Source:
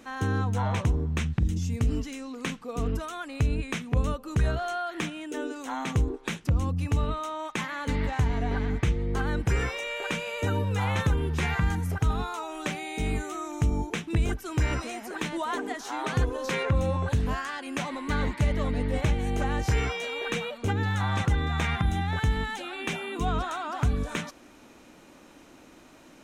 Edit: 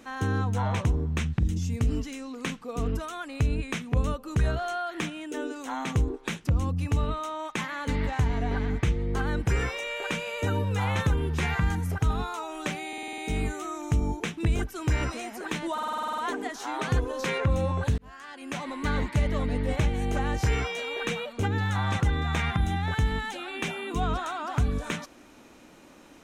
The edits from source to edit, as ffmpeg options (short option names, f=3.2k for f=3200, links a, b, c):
-filter_complex "[0:a]asplit=17[a][b][c][d][e][f][g][h][i][j][k][l][m][n][o][p][q];[a]atrim=end=12.932[r];[b]atrim=start=12.878:end=12.932[s];[c]atrim=start=12.878:end=12.932[t];[d]atrim=start=12.878:end=12.932[u];[e]atrim=start=12.878:end=12.932[v];[f]atrim=start=12.878:end=12.932[w];[g]atrim=start=12.878:end=15.482[x];[h]atrim=start=15.428:end=15.482[y];[i]atrim=start=15.428:end=15.482[z];[j]atrim=start=15.428:end=15.482[aa];[k]atrim=start=15.428:end=15.482[ab];[l]atrim=start=15.428:end=15.482[ac];[m]atrim=start=15.428:end=15.482[ad];[n]atrim=start=15.428:end=15.482[ae];[o]atrim=start=15.428:end=15.482[af];[p]atrim=start=15.428:end=17.23,asetpts=PTS-STARTPTS,afade=t=out:st=1.798:d=0.004:c=hsin[ag];[q]atrim=start=17.23,asetpts=PTS-STARTPTS,afade=t=in:d=0.78[ah];[r][s]acrossfade=d=0.004:c1=hsin:c2=hsin[ai];[ai][t]acrossfade=d=0.004:c1=hsin:c2=hsin[aj];[aj][u]acrossfade=d=0.004:c1=hsin:c2=hsin[ak];[ak][v]acrossfade=d=0.004:c1=hsin:c2=hsin[al];[al][w]acrossfade=d=0.004:c1=hsin:c2=hsin[am];[am][x]acrossfade=d=0.004:c1=hsin:c2=hsin[an];[an][y]acrossfade=d=0.004:c1=hsin:c2=hsin[ao];[ao][z]acrossfade=d=0.004:c1=hsin:c2=hsin[ap];[ap][aa]acrossfade=d=0.004:c1=hsin:c2=hsin[aq];[aq][ab]acrossfade=d=0.004:c1=hsin:c2=hsin[ar];[ar][ac]acrossfade=d=0.004:c1=hsin:c2=hsin[as];[as][ad]acrossfade=d=0.004:c1=hsin:c2=hsin[at];[at][ae]acrossfade=d=0.004:c1=hsin:c2=hsin[au];[au][af]acrossfade=d=0.004:c1=hsin:c2=hsin[av];[ag][ah]concat=n=2:v=0:a=1[aw];[av][aw]acrossfade=d=0.004:c1=hsin:c2=hsin"